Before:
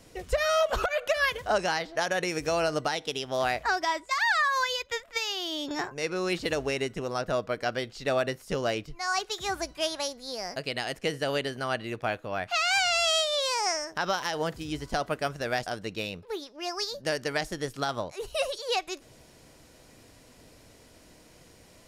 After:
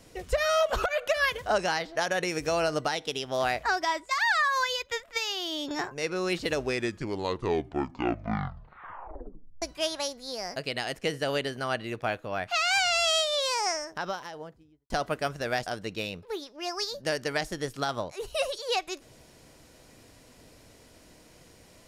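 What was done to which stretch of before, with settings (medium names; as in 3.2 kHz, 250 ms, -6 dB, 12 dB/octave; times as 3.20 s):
6.48 s: tape stop 3.14 s
13.55–14.90 s: studio fade out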